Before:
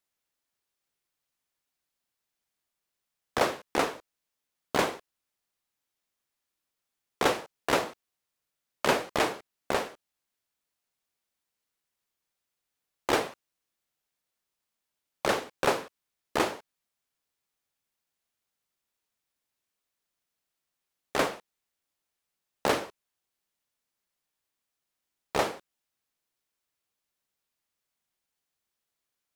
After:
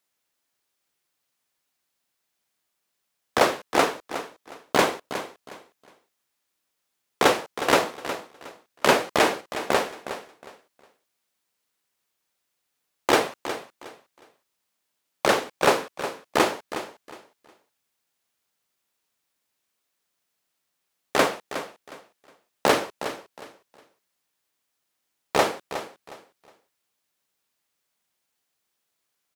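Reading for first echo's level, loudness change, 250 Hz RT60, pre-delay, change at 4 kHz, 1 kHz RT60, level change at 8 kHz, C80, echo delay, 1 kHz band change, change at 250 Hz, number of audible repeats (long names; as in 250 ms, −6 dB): −11.5 dB, +5.0 dB, no reverb audible, no reverb audible, +7.0 dB, no reverb audible, +7.0 dB, no reverb audible, 363 ms, +6.5 dB, +6.0 dB, 2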